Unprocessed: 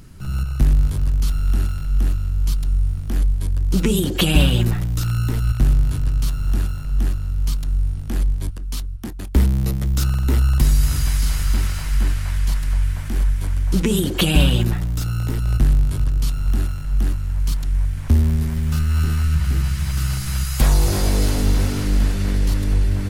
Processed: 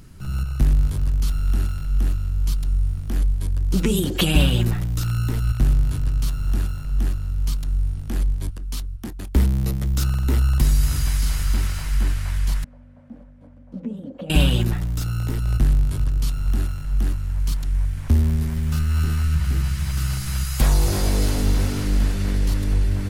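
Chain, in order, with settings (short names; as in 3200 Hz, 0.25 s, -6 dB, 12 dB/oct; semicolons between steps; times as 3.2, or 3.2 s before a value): 12.64–14.3 double band-pass 370 Hz, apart 1.1 oct; gain -2 dB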